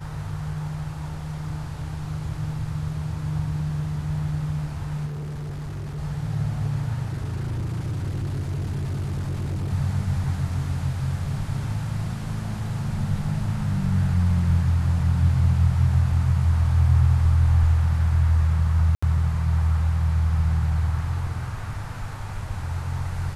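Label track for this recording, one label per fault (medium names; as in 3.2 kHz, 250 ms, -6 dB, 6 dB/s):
5.060000	5.990000	clipped -29 dBFS
7.050000	9.730000	clipped -24 dBFS
18.950000	19.020000	dropout 75 ms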